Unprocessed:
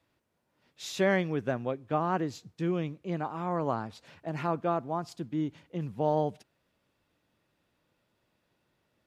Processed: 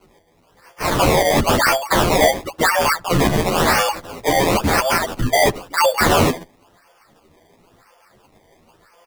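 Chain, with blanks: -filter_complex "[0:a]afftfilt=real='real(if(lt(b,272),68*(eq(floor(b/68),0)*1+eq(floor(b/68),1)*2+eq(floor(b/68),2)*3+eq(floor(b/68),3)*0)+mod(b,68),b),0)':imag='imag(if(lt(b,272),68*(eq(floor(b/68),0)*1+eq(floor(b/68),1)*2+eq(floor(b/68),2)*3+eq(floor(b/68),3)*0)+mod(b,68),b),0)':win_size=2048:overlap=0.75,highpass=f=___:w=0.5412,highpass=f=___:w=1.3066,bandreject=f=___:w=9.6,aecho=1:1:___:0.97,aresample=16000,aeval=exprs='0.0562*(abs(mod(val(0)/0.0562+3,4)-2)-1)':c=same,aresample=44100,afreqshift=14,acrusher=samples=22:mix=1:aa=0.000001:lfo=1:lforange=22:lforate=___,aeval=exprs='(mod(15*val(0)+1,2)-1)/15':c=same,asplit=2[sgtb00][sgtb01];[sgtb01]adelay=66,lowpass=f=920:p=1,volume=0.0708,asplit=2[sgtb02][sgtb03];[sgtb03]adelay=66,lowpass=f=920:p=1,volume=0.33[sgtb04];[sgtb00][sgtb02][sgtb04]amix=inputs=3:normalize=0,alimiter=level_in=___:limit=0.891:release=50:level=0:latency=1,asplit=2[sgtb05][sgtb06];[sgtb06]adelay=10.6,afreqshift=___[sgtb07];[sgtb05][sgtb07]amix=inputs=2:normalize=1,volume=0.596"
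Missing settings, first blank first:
380, 380, 3.2k, 5.8, 0.97, 21.1, 0.83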